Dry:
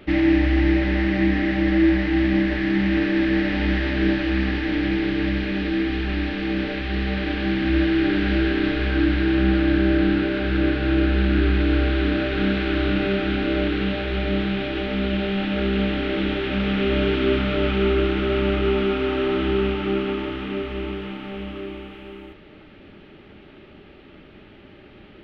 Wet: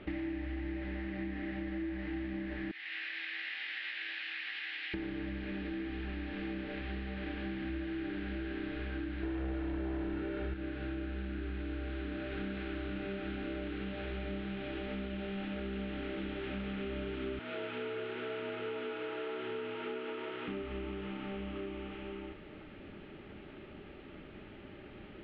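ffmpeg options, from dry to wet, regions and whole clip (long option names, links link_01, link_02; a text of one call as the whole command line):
ffmpeg -i in.wav -filter_complex "[0:a]asettb=1/sr,asplit=3[link_01][link_02][link_03];[link_01]atrim=end=2.714[link_04];[link_02]atrim=start=2.71:end=4.94,asetpts=PTS-STARTPTS,afade=type=in:duration=0.004:curve=qsin,afade=type=out:start_time=2.226:duration=0.004:curve=qsin,asuperpass=centerf=3500:order=4:qfactor=0.88,asplit=2[link_05][link_06];[link_06]adelay=18,volume=-4.5dB[link_07];[link_05][link_07]amix=inputs=2:normalize=0,atrim=end_sample=98343[link_08];[link_03]atrim=start=4.936[link_09];[link_04][link_08]acrossfade=duration=0.004:curve1=hsin:curve2=qsin[link_10];[link_10][link_09]acrossfade=duration=0.004:curve1=qsin:curve2=hsin,asettb=1/sr,asplit=3[link_11][link_12][link_13];[link_11]atrim=end=9.234[link_14];[link_12]atrim=start=9.23:end=10.54,asetpts=PTS-STARTPTS,afade=type=in:duration=0.004:curve=qsin,afade=type=out:start_time=1.306:duration=0.004:curve=qsin,highshelf=frequency=2100:gain=-6.5,aecho=1:1:2.2:0.48,atrim=end_sample=57771,aeval=exprs='0.447*sin(PI/2*1.78*val(0)/0.447)':channel_layout=same[link_15];[link_13]atrim=start=10.536[link_16];[link_14][link_15]acrossfade=duration=0.004:curve1=hsin:curve2=qsin[link_17];[link_17][link_16]acrossfade=duration=0.004:curve1=qsin:curve2=hsin,asettb=1/sr,asplit=3[link_18][link_19][link_20];[link_18]atrim=end=17.394[link_21];[link_19]atrim=start=17.39:end=20.48,asetpts=PTS-STARTPTS,afade=type=in:duration=0.004:curve=qsin,afade=type=out:start_time=3.086:duration=0.004:curve=qsin,highpass=frequency=540:poles=1,afreqshift=48,highshelf=frequency=4500:gain=-5.5[link_22];[link_20]atrim=start=20.476[link_23];[link_21][link_22]acrossfade=duration=0.004:curve1=hsin:curve2=qsin[link_24];[link_24][link_23]acrossfade=duration=0.004:curve1=qsin:curve2=hsin,lowpass=3300,acompressor=threshold=-33dB:ratio=6,volume=-4dB" out.wav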